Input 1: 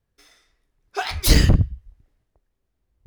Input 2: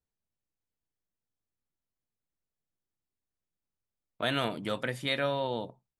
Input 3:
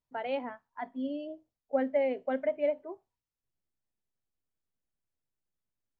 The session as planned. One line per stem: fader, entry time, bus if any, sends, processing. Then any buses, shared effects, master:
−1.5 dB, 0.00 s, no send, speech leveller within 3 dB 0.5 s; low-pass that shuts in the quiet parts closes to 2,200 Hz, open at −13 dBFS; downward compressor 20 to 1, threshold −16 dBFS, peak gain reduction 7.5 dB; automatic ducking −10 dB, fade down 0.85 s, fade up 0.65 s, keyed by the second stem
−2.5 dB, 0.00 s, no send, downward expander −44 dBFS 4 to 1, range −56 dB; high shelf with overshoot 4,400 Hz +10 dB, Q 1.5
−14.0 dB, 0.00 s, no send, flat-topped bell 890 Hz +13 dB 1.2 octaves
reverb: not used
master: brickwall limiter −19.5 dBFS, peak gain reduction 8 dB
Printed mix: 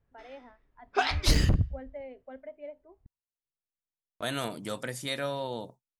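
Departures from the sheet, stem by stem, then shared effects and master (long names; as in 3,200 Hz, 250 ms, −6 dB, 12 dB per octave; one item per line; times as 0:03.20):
stem 3: missing flat-topped bell 890 Hz +13 dB 1.2 octaves
master: missing brickwall limiter −19.5 dBFS, peak gain reduction 8 dB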